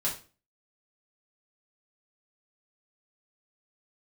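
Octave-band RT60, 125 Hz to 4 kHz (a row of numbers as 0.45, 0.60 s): 0.45, 0.45, 0.40, 0.35, 0.35, 0.30 s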